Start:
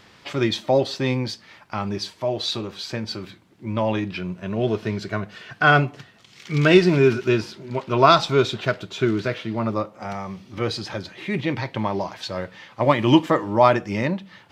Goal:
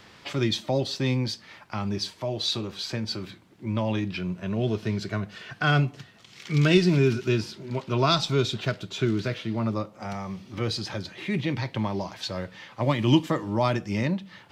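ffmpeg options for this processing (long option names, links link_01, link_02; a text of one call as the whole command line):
ffmpeg -i in.wav -filter_complex "[0:a]acrossover=split=260|3000[link_01][link_02][link_03];[link_02]acompressor=threshold=-42dB:ratio=1.5[link_04];[link_01][link_04][link_03]amix=inputs=3:normalize=0" out.wav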